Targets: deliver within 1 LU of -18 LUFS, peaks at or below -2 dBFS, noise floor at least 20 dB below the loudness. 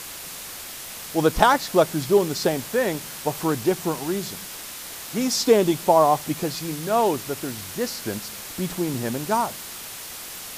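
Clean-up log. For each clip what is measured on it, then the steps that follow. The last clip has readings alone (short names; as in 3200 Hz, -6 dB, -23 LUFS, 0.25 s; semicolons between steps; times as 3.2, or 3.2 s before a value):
noise floor -37 dBFS; noise floor target -44 dBFS; loudness -24.0 LUFS; peak -2.5 dBFS; loudness target -18.0 LUFS
-> noise print and reduce 7 dB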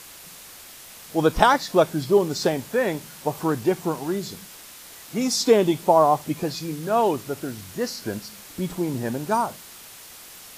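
noise floor -44 dBFS; loudness -23.0 LUFS; peak -2.5 dBFS; loudness target -18.0 LUFS
-> gain +5 dB; limiter -2 dBFS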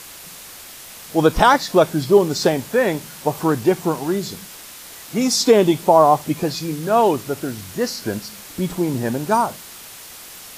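loudness -18.5 LUFS; peak -2.0 dBFS; noise floor -39 dBFS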